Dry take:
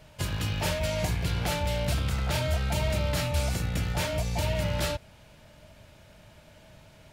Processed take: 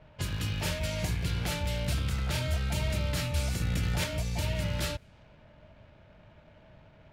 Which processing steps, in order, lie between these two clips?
slack as between gear wheels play −56 dBFS
low-pass that shuts in the quiet parts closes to 2,800 Hz, open at −28.5 dBFS
dynamic equaliser 750 Hz, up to −6 dB, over −48 dBFS, Q 1.2
0:03.61–0:04.04: envelope flattener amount 100%
level −2 dB

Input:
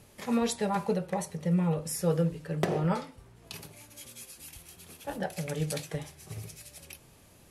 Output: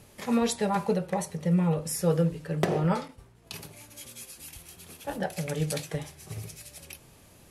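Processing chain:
0:03.08–0:03.62: downward expander −49 dBFS
level +2.5 dB

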